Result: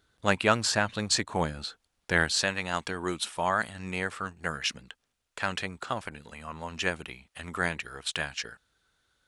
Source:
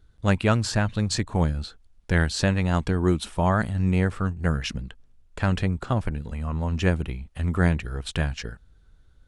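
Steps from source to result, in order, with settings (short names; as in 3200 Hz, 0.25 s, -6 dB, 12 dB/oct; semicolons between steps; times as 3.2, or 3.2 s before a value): HPF 640 Hz 6 dB/oct, from 2.38 s 1400 Hz; gain +3 dB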